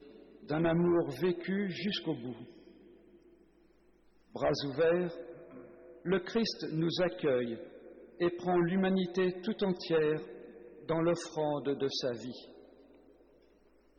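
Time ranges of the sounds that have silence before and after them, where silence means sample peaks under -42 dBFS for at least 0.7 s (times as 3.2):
4.36–12.44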